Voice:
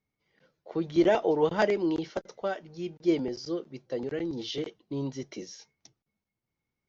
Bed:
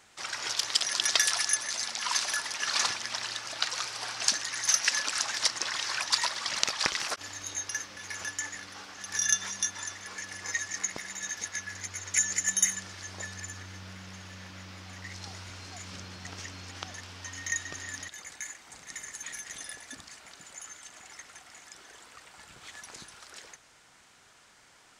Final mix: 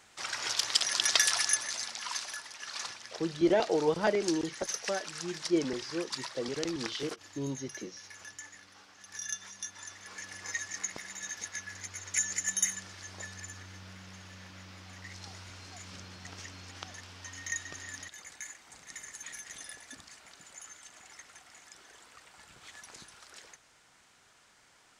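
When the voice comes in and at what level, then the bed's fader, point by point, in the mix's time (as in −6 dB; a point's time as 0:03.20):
2.45 s, −3.0 dB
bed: 0:01.51 −0.5 dB
0:02.49 −11.5 dB
0:09.54 −11.5 dB
0:10.22 −4 dB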